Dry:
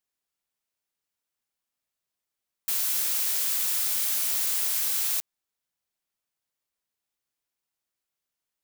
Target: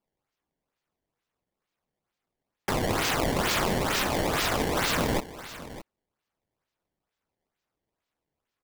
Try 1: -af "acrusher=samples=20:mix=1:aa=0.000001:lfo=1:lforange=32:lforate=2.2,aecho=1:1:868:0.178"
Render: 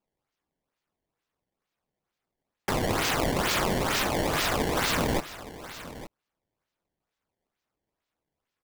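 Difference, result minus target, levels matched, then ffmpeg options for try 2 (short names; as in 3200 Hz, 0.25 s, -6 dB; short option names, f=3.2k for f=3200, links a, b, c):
echo 0.253 s late
-af "acrusher=samples=20:mix=1:aa=0.000001:lfo=1:lforange=32:lforate=2.2,aecho=1:1:615:0.178"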